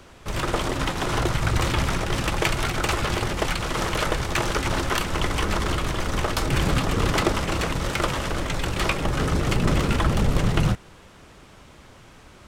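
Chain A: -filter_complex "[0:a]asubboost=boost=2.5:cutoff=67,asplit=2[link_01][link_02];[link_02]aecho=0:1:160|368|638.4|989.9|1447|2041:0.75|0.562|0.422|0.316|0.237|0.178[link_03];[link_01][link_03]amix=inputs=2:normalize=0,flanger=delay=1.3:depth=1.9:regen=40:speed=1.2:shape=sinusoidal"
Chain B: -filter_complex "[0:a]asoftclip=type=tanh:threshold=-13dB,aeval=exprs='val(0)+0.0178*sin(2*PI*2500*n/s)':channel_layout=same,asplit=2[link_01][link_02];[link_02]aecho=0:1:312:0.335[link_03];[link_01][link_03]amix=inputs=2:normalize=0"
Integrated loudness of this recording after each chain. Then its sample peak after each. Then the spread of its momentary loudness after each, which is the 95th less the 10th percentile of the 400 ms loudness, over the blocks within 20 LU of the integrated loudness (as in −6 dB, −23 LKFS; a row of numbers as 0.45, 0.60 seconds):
−24.0, −24.5 LKFS; −3.0, −11.0 dBFS; 8, 8 LU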